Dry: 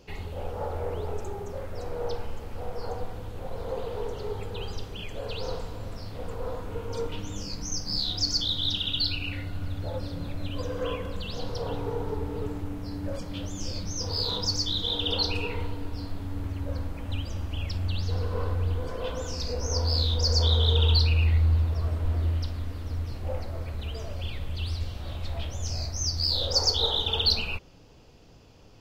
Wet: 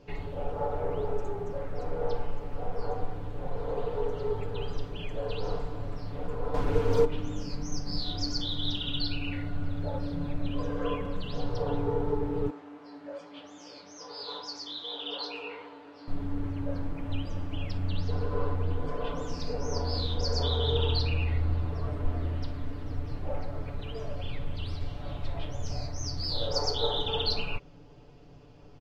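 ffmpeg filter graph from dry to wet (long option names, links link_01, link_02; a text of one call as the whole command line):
ffmpeg -i in.wav -filter_complex "[0:a]asettb=1/sr,asplit=3[link_01][link_02][link_03];[link_01]atrim=end=6.544[link_04];[link_02]atrim=start=6.54:end=7.05,asetpts=PTS-STARTPTS,afade=type=in:duration=0.004:curve=qsin,afade=type=out:start_time=0.506:duration=0.004:curve=qsin,acontrast=78,acrusher=bits=5:mix=0:aa=0.5[link_05];[link_03]atrim=start=7.046[link_06];[link_04][link_05]acrossfade=duration=0.004:curve1=hsin:curve2=qsin[link_07];[link_07][link_06]acrossfade=duration=0.004:curve1=qsin:curve2=hsin,asettb=1/sr,asplit=3[link_08][link_09][link_10];[link_08]atrim=end=12.504[link_11];[link_09]atrim=start=12.5:end=16.08,asetpts=PTS-STARTPTS,afade=type=in:duration=0.004:curve=qsin,afade=type=out:start_time=3.576:duration=0.004:curve=qsin,flanger=delay=16.5:depth=4.3:speed=2.5,highpass=560,lowpass=6800[link_12];[link_10]atrim=start=16.076[link_13];[link_11][link_12]acrossfade=duration=0.004:curve1=hsin:curve2=qsin[link_14];[link_14][link_13]acrossfade=duration=0.004:curve1=qsin:curve2=hsin,lowpass=frequency=1600:poles=1,aecho=1:1:6.9:0.7" out.wav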